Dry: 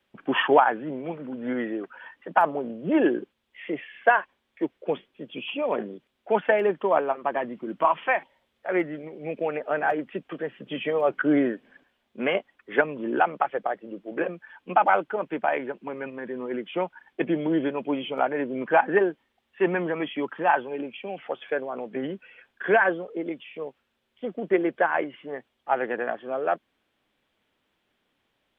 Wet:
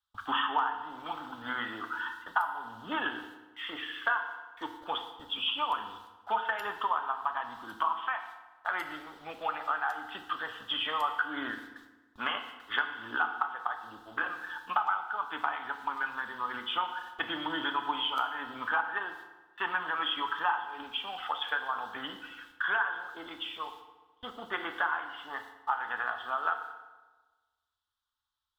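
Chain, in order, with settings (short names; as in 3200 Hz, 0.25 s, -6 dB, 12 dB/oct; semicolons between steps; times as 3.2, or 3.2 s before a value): gate with hold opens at -43 dBFS; EQ curve 100 Hz 0 dB, 150 Hz -29 dB, 230 Hz -21 dB, 370 Hz -27 dB, 570 Hz -25 dB, 860 Hz -2 dB, 1300 Hz +7 dB, 2300 Hz -15 dB, 3800 Hz +13 dB; compressor 6:1, threshold -36 dBFS, peak gain reduction 20 dB; FDN reverb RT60 1.3 s, low-frequency decay 1.05×, high-frequency decay 0.85×, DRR 5 dB; mismatched tape noise reduction decoder only; gain +7.5 dB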